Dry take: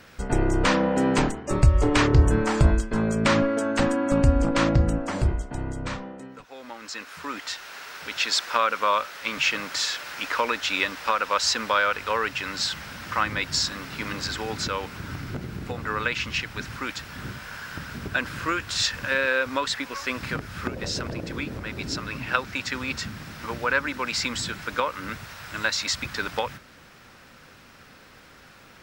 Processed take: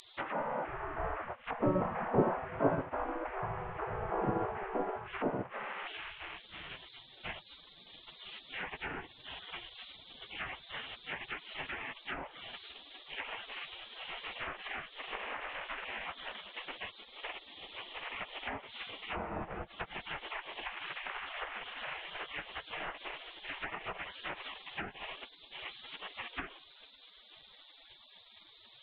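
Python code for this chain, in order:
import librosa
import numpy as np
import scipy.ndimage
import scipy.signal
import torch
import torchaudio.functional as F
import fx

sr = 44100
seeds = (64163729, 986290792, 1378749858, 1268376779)

y = fx.delta_mod(x, sr, bps=16000, step_db=-34.5)
y = fx.spec_gate(y, sr, threshold_db=-20, keep='weak')
y = fx.env_lowpass_down(y, sr, base_hz=820.0, full_db=-38.0)
y = y * 10.0 ** (6.0 / 20.0)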